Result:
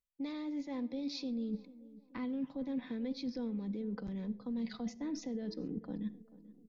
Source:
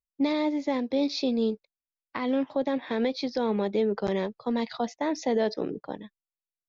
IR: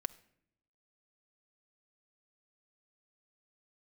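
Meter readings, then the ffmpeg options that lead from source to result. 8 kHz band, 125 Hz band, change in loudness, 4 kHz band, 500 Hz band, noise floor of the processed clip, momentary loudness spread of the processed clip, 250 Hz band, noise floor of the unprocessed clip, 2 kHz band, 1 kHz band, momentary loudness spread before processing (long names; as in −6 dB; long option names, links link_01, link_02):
can't be measured, −5.5 dB, −11.5 dB, −12.5 dB, −18.5 dB, −63 dBFS, 5 LU, −8.5 dB, below −85 dBFS, −16.0 dB, −20.0 dB, 8 LU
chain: -filter_complex "[0:a]asubboost=boost=9:cutoff=250,alimiter=limit=-21.5dB:level=0:latency=1:release=36,areverse,acompressor=threshold=-39dB:ratio=6,areverse,asplit=2[link_01][link_02];[link_02]adelay=437,lowpass=frequency=1200:poles=1,volume=-18dB,asplit=2[link_03][link_04];[link_04]adelay=437,lowpass=frequency=1200:poles=1,volume=0.53,asplit=2[link_05][link_06];[link_06]adelay=437,lowpass=frequency=1200:poles=1,volume=0.53,asplit=2[link_07][link_08];[link_08]adelay=437,lowpass=frequency=1200:poles=1,volume=0.53[link_09];[link_01][link_03][link_05][link_07][link_09]amix=inputs=5:normalize=0[link_10];[1:a]atrim=start_sample=2205,afade=type=out:start_time=0.19:duration=0.01,atrim=end_sample=8820[link_11];[link_10][link_11]afir=irnorm=-1:irlink=0,volume=1.5dB"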